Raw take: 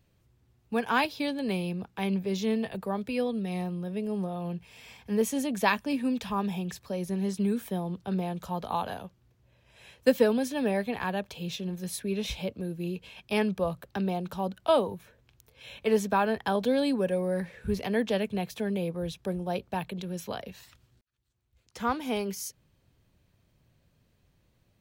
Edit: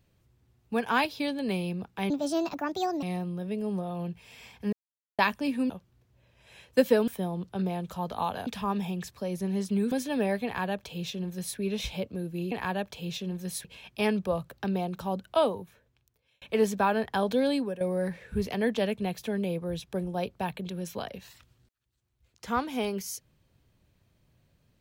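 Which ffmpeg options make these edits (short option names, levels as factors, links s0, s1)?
-filter_complex "[0:a]asplit=13[s0][s1][s2][s3][s4][s5][s6][s7][s8][s9][s10][s11][s12];[s0]atrim=end=2.104[s13];[s1]atrim=start=2.1:end=3.48,asetpts=PTS-STARTPTS,asetrate=65709,aresample=44100,atrim=end_sample=40844,asetpts=PTS-STARTPTS[s14];[s2]atrim=start=3.476:end=5.18,asetpts=PTS-STARTPTS,afade=t=out:st=1.7:d=0.004:c=hsin[s15];[s3]atrim=start=5.18:end=5.64,asetpts=PTS-STARTPTS,volume=0[s16];[s4]atrim=start=5.64:end=6.152,asetpts=PTS-STARTPTS,afade=t=in:d=0.004:c=hsin[s17];[s5]atrim=start=8.988:end=10.372[s18];[s6]atrim=start=7.598:end=8.992[s19];[s7]atrim=start=6.148:end=7.602[s20];[s8]atrim=start=10.368:end=12.972[s21];[s9]atrim=start=10.898:end=12.032[s22];[s10]atrim=start=12.968:end=15.74,asetpts=PTS-STARTPTS,afade=t=out:st=1.622:d=1.15[s23];[s11]atrim=start=15.74:end=17.13,asetpts=PTS-STARTPTS,afade=t=in:d=0.004:c=hsin,afade=t=out:st=1.11:d=0.28:silence=0.223872[s24];[s12]atrim=start=17.13,asetpts=PTS-STARTPTS,afade=t=in:d=0.004:c=hsin:silence=0.223872[s25];[s13][s14]acrossfade=d=0.004:c1=hsin:c2=hsin[s26];[s15][s16][s17]concat=n=3:v=0:a=1[s27];[s26][s27]acrossfade=d=0.004:c1=hsin:c2=hsin[s28];[s28][s18]acrossfade=d=0.004:c1=hsin:c2=hsin[s29];[s29][s19]acrossfade=d=0.004:c1=hsin:c2=hsin[s30];[s30][s20]acrossfade=d=0.004:c1=hsin:c2=hsin[s31];[s31][s21]acrossfade=d=0.004:c1=hsin:c2=hsin[s32];[s32][s22]acrossfade=d=0.004:c1=hsin:c2=hsin[s33];[s23][s24][s25]concat=n=3:v=0:a=1[s34];[s33][s34]acrossfade=d=0.004:c1=hsin:c2=hsin"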